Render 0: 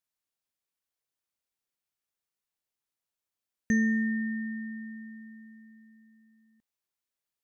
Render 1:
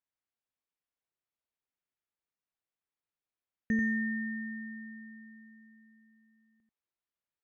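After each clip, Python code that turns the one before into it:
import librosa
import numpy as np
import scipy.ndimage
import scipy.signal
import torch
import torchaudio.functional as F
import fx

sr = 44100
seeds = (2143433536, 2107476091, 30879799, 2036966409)

y = scipy.signal.sosfilt(scipy.signal.butter(2, 2800.0, 'lowpass', fs=sr, output='sos'), x)
y = y + 10.0 ** (-5.0 / 20.0) * np.pad(y, (int(89 * sr / 1000.0), 0))[:len(y)]
y = F.gain(torch.from_numpy(y), -4.0).numpy()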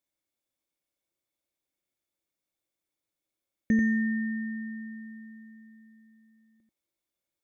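y = fx.bass_treble(x, sr, bass_db=5, treble_db=7)
y = fx.small_body(y, sr, hz=(330.0, 550.0, 2200.0, 3500.0), ring_ms=35, db=12)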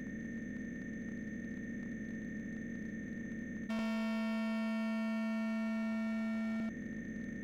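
y = fx.bin_compress(x, sr, power=0.2)
y = np.clip(10.0 ** (31.5 / 20.0) * y, -1.0, 1.0) / 10.0 ** (31.5 / 20.0)
y = F.gain(torch.from_numpy(y), -4.0).numpy()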